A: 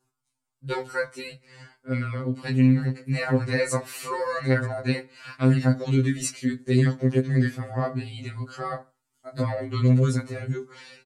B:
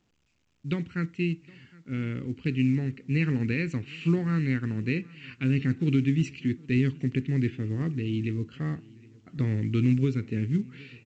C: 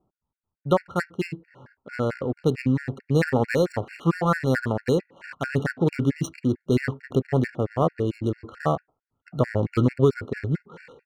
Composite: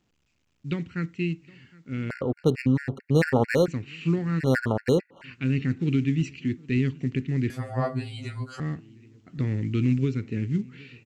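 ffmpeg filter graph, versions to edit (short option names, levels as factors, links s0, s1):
-filter_complex "[2:a]asplit=2[s0][s1];[1:a]asplit=4[s2][s3][s4][s5];[s2]atrim=end=2.102[s6];[s0]atrim=start=2.098:end=3.682[s7];[s3]atrim=start=3.678:end=4.41[s8];[s1]atrim=start=4.39:end=5.25[s9];[s4]atrim=start=5.23:end=7.502[s10];[0:a]atrim=start=7.498:end=8.602[s11];[s5]atrim=start=8.598[s12];[s6][s7]acrossfade=d=0.004:c1=hsin:c2=hsin[s13];[s13][s8]acrossfade=d=0.004:c1=hsin:c2=hsin[s14];[s14][s9]acrossfade=d=0.02:c1=tri:c2=tri[s15];[s15][s10]acrossfade=d=0.02:c1=tri:c2=tri[s16];[s16][s11]acrossfade=d=0.004:c1=hsin:c2=hsin[s17];[s17][s12]acrossfade=d=0.004:c1=hsin:c2=hsin"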